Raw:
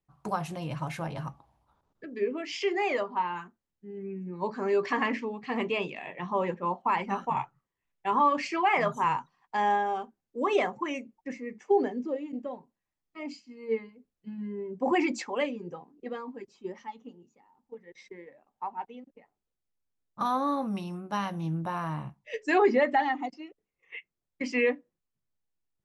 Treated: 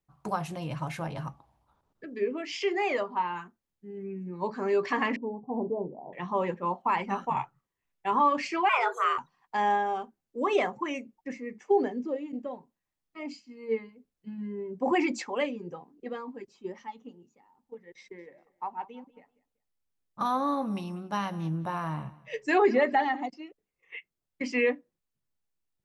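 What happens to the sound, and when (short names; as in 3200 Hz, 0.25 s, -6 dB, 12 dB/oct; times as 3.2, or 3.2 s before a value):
5.16–6.13 steep low-pass 930 Hz 72 dB/oct
8.69–9.18 frequency shift +240 Hz
17.99–23.26 feedback echo 0.192 s, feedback 25%, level -20 dB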